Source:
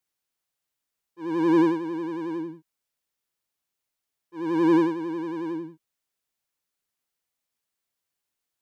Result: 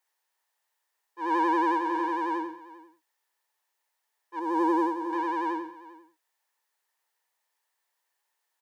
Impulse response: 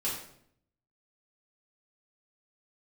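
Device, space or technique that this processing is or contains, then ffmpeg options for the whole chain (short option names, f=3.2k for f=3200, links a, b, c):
laptop speaker: -filter_complex "[0:a]asettb=1/sr,asplit=3[a][b][c];[a]atrim=end=4.394[d];[b]atrim=start=4.39:end=5.13,asetpts=PTS-STARTPTS,afade=t=in:d=0.004:c=qsin,afade=t=out:st=0.736:d=0.004:c=qsin,equalizer=f=2.3k:t=o:w=2.6:g=-12[e];[c]atrim=start=5.126[f];[d][e]acrossfade=d=0.004:c1=hsin:c2=qsin[g];[g][f]acrossfade=d=0.004:c1=qsin:c2=hsin,highpass=f=390:w=0.5412,highpass=f=390:w=1.3066,equalizer=f=910:t=o:w=0.44:g=12,equalizer=f=1.8k:t=o:w=0.21:g=11,aecho=1:1:396:0.119,alimiter=limit=-20dB:level=0:latency=1,volume=3dB"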